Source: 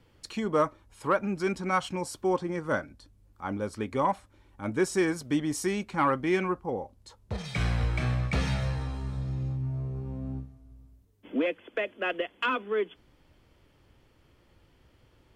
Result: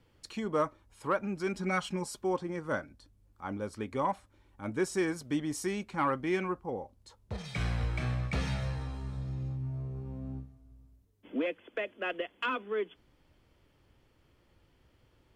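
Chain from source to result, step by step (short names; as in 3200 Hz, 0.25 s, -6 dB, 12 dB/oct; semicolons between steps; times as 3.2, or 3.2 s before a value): 1.54–2.19 comb 4.9 ms, depth 80%; gain -4.5 dB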